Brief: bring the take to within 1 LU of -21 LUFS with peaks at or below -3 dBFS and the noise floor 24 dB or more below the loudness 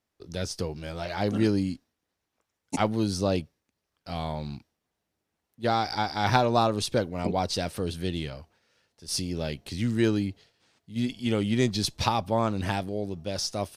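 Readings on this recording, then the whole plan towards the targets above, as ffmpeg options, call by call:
loudness -28.5 LUFS; peak level -5.5 dBFS; loudness target -21.0 LUFS
-> -af "volume=2.37,alimiter=limit=0.708:level=0:latency=1"

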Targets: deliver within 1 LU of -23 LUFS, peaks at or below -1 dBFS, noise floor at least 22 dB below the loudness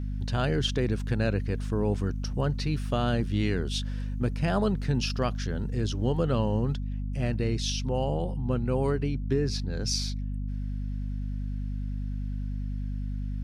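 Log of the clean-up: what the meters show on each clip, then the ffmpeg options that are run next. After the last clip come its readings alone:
hum 50 Hz; highest harmonic 250 Hz; hum level -29 dBFS; loudness -29.5 LUFS; peak level -14.0 dBFS; loudness target -23.0 LUFS
-> -af "bandreject=f=50:t=h:w=4,bandreject=f=100:t=h:w=4,bandreject=f=150:t=h:w=4,bandreject=f=200:t=h:w=4,bandreject=f=250:t=h:w=4"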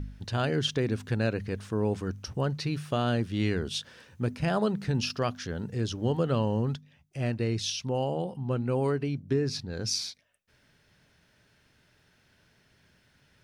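hum not found; loudness -30.0 LUFS; peak level -15.5 dBFS; loudness target -23.0 LUFS
-> -af "volume=2.24"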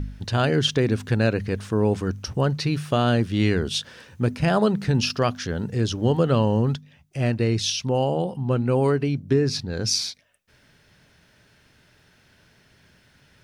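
loudness -23.0 LUFS; peak level -8.5 dBFS; noise floor -59 dBFS

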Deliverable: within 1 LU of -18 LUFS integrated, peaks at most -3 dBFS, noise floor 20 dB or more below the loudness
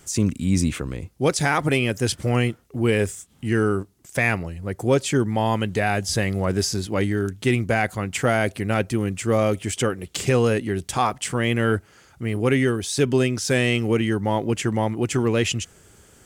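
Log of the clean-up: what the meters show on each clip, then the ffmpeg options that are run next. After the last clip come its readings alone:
loudness -23.0 LUFS; peak level -8.5 dBFS; loudness target -18.0 LUFS
-> -af "volume=1.78"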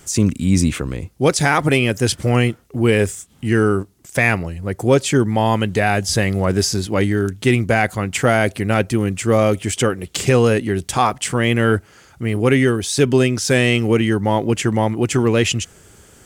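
loudness -18.0 LUFS; peak level -3.5 dBFS; noise floor -49 dBFS

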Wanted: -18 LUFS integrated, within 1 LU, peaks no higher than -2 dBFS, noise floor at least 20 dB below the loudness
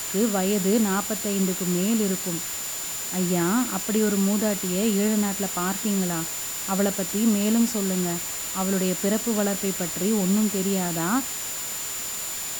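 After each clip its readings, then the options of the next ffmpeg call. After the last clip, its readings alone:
steady tone 7.1 kHz; tone level -32 dBFS; noise floor -31 dBFS; noise floor target -44 dBFS; loudness -24.0 LUFS; peak level -9.5 dBFS; loudness target -18.0 LUFS
-> -af "bandreject=f=7100:w=30"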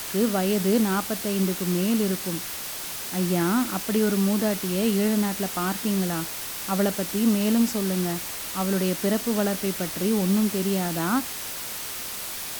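steady tone not found; noise floor -34 dBFS; noise floor target -45 dBFS
-> -af "afftdn=nr=11:nf=-34"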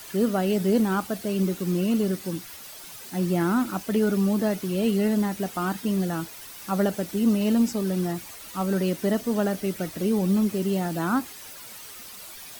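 noise floor -42 dBFS; noise floor target -46 dBFS
-> -af "afftdn=nr=6:nf=-42"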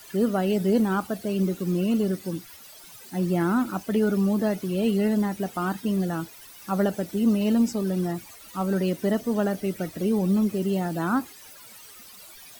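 noise floor -47 dBFS; loudness -25.5 LUFS; peak level -11.0 dBFS; loudness target -18.0 LUFS
-> -af "volume=2.37"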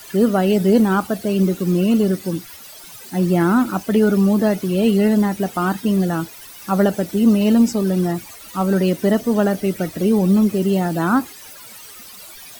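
loudness -18.0 LUFS; peak level -3.5 dBFS; noise floor -40 dBFS

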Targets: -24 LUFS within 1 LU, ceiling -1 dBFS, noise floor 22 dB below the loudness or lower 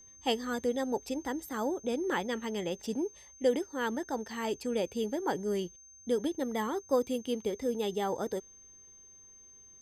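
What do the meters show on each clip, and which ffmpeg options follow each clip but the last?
steady tone 6.3 kHz; tone level -53 dBFS; loudness -33.5 LUFS; peak level -15.5 dBFS; loudness target -24.0 LUFS
-> -af "bandreject=f=6300:w=30"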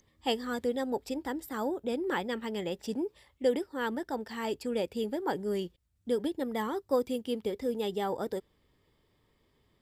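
steady tone not found; loudness -33.5 LUFS; peak level -15.5 dBFS; loudness target -24.0 LUFS
-> -af "volume=2.99"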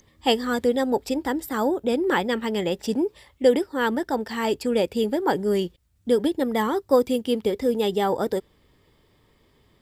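loudness -24.0 LUFS; peak level -6.0 dBFS; noise floor -62 dBFS

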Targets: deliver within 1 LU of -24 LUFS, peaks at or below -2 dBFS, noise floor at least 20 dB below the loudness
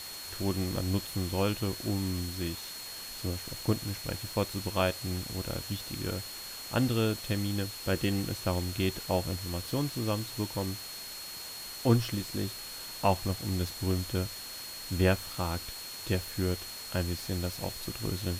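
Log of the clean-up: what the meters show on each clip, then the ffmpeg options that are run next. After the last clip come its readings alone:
steady tone 4.3 kHz; tone level -43 dBFS; noise floor -42 dBFS; noise floor target -53 dBFS; loudness -32.5 LUFS; peak level -10.0 dBFS; loudness target -24.0 LUFS
-> -af "bandreject=f=4300:w=30"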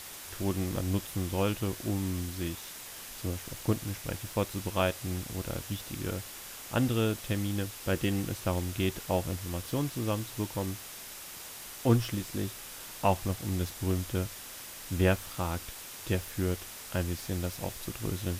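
steady tone not found; noise floor -45 dBFS; noise floor target -53 dBFS
-> -af "afftdn=nr=8:nf=-45"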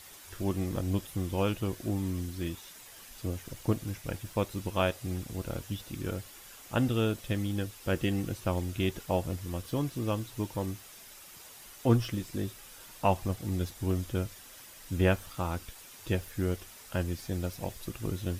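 noise floor -51 dBFS; noise floor target -53 dBFS
-> -af "afftdn=nr=6:nf=-51"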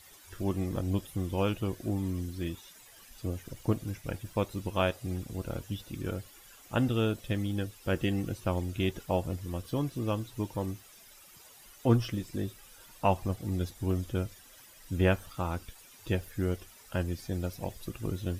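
noise floor -55 dBFS; loudness -33.0 LUFS; peak level -10.0 dBFS; loudness target -24.0 LUFS
-> -af "volume=2.82,alimiter=limit=0.794:level=0:latency=1"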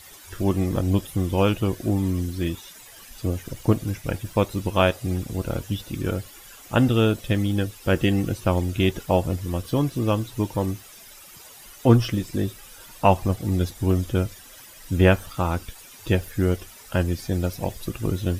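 loudness -24.5 LUFS; peak level -2.0 dBFS; noise floor -46 dBFS

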